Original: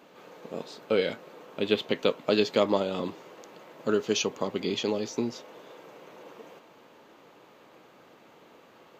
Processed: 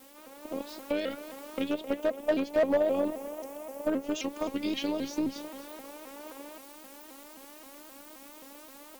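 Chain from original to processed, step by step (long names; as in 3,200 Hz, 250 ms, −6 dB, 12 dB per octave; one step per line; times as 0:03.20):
background noise blue −50 dBFS
downward compressor 2.5 to 1, threshold −31 dBFS, peak gain reduction 9.5 dB
0:01.68–0:04.22: graphic EQ with 15 bands 630 Hz +10 dB, 1,600 Hz −8 dB, 4,000 Hz −10 dB
automatic gain control gain up to 4.5 dB
hard clipping −18.5 dBFS, distortion −12 dB
bass and treble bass +4 dB, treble −5 dB
echo with a time of its own for lows and highs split 340 Hz, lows 178 ms, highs 262 ms, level −16 dB
phases set to zero 290 Hz
pitch modulation by a square or saw wave saw up 3.8 Hz, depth 160 cents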